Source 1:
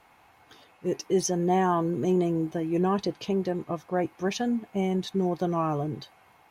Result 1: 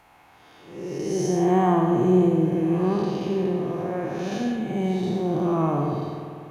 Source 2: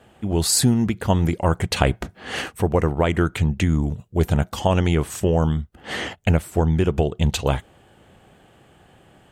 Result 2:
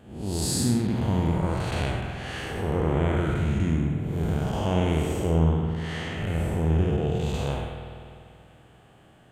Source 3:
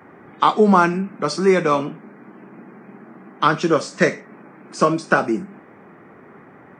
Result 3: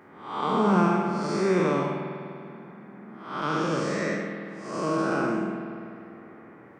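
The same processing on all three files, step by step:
spectral blur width 262 ms; spring tank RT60 2.4 s, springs 49 ms, chirp 70 ms, DRR 3.5 dB; peak normalisation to -9 dBFS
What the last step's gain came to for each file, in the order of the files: +5.0 dB, -2.5 dB, -4.0 dB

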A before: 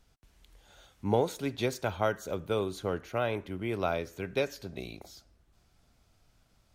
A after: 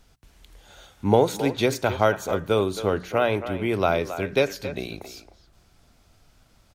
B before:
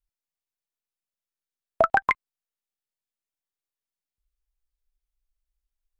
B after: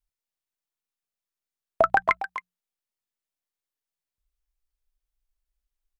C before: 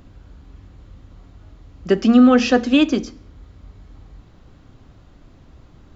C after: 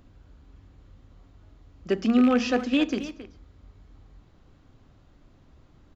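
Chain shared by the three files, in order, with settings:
rattle on loud lows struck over -20 dBFS, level -16 dBFS; hum notches 60/120/180 Hz; speakerphone echo 270 ms, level -11 dB; normalise loudness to -24 LUFS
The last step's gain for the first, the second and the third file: +8.5 dB, 0.0 dB, -8.5 dB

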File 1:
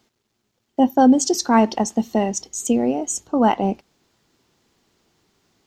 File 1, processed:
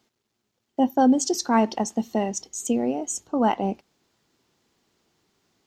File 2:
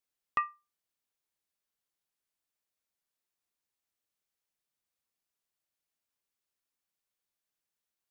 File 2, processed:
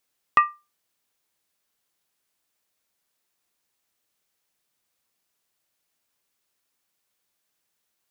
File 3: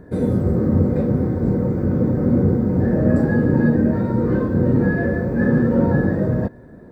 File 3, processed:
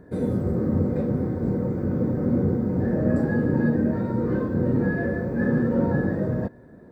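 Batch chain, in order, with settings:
bass shelf 70 Hz -6.5 dB; normalise loudness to -24 LUFS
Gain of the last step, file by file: -4.5 dB, +12.0 dB, -5.0 dB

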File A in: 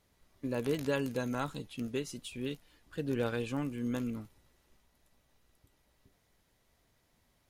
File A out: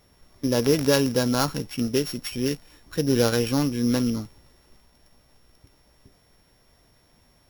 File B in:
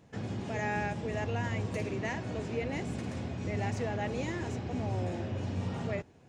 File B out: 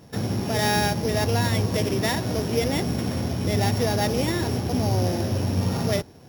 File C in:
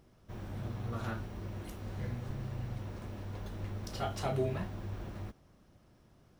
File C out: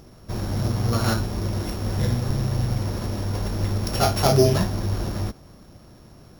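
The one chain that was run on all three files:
sorted samples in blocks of 8 samples; normalise loudness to -24 LUFS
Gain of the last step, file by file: +12.0 dB, +10.5 dB, +15.5 dB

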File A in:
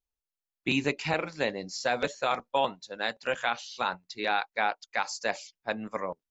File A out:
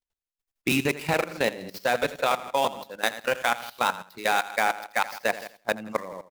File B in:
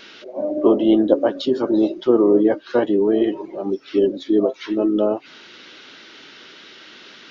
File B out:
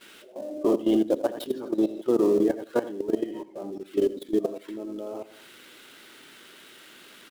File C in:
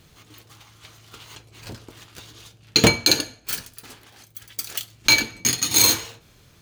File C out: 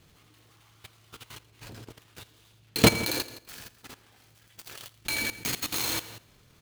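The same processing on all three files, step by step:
dead-time distortion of 0.066 ms; feedback delay 83 ms, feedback 34%, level -8.5 dB; level held to a coarse grid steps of 15 dB; normalise loudness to -27 LUFS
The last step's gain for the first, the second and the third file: +7.5 dB, -5.0 dB, +0.5 dB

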